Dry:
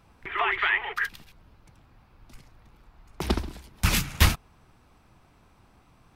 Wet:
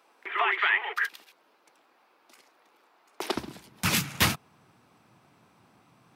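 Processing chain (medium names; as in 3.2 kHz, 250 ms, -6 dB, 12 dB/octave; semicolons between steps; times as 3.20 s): high-pass 350 Hz 24 dB/octave, from 3.36 s 120 Hz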